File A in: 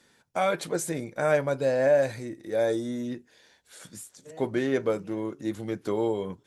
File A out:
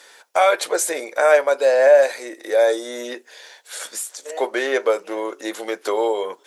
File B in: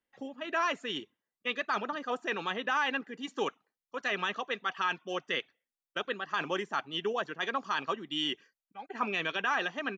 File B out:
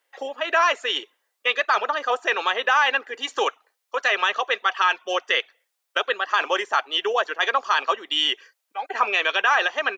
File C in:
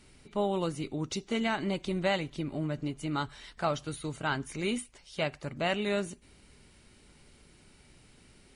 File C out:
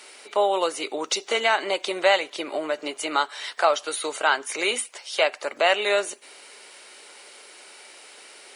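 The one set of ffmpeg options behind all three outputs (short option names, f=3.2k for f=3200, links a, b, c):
-filter_complex "[0:a]highpass=f=470:w=0.5412,highpass=f=470:w=1.3066,asplit=2[a][b];[b]acompressor=threshold=-42dB:ratio=6,volume=2.5dB[c];[a][c]amix=inputs=2:normalize=0,volume=9dB"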